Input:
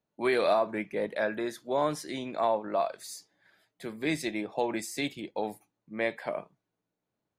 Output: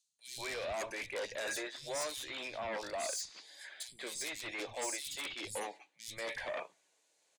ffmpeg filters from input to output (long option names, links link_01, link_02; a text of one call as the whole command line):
ffmpeg -i in.wav -filter_complex "[0:a]aderivative,areverse,acompressor=threshold=-57dB:ratio=20,areverse,highpass=140,equalizer=frequency=230:width_type=q:width=4:gain=-7,equalizer=frequency=540:width_type=q:width=4:gain=5,equalizer=frequency=1300:width_type=q:width=4:gain=-8,equalizer=frequency=5400:width_type=q:width=4:gain=-4,lowpass=frequency=7900:width=0.5412,lowpass=frequency=7900:width=1.3066,aeval=exprs='0.00422*sin(PI/2*3.16*val(0)/0.00422)':channel_layout=same,acrossover=split=180|3500[link_01][link_02][link_03];[link_01]adelay=80[link_04];[link_02]adelay=190[link_05];[link_04][link_05][link_03]amix=inputs=3:normalize=0,volume=13.5dB" out.wav